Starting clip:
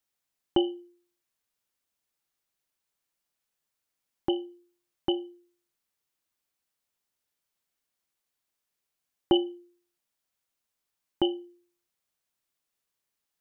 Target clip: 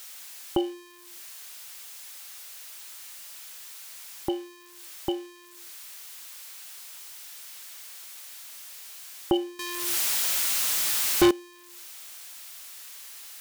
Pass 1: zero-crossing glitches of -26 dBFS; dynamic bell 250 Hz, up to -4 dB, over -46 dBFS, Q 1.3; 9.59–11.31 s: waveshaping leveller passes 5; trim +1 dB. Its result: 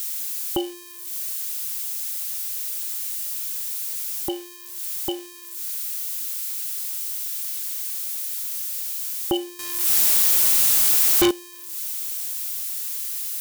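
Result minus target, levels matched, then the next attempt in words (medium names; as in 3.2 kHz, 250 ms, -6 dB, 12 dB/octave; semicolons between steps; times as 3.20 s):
2 kHz band -3.0 dB
zero-crossing glitches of -26 dBFS; dynamic bell 250 Hz, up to -4 dB, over -46 dBFS, Q 1.3; low-pass 1.9 kHz 6 dB/octave; 9.59–11.31 s: waveshaping leveller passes 5; trim +1 dB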